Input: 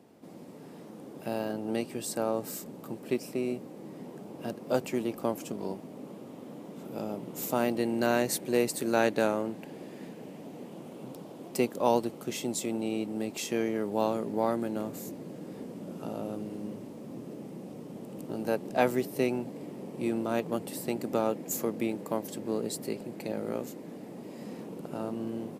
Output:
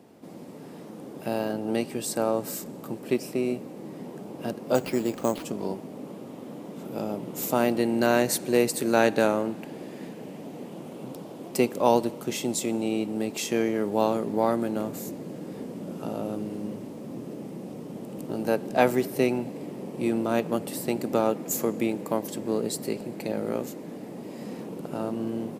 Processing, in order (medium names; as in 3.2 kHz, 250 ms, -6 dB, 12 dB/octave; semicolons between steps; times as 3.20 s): on a send at -20 dB: low-pass 8.6 kHz + reverberation RT60 1.3 s, pre-delay 39 ms; 4.75–5.45 s: on the sum: careless resampling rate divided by 6×, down none, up hold; trim +4.5 dB